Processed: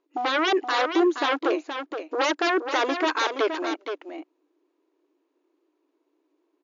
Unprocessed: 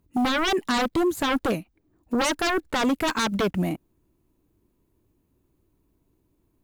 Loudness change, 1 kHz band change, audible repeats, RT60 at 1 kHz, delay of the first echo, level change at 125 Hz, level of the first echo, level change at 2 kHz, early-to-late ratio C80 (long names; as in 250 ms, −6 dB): 0.0 dB, +2.0 dB, 1, no reverb audible, 472 ms, below −35 dB, −8.0 dB, +1.5 dB, no reverb audible